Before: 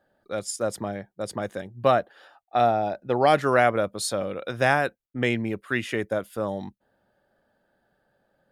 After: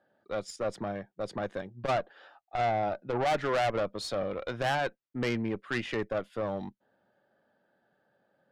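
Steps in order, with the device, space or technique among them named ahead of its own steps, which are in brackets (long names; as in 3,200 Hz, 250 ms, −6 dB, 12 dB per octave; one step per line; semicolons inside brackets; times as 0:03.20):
valve radio (band-pass filter 130–4,100 Hz; tube saturation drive 23 dB, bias 0.5; saturating transformer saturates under 130 Hz)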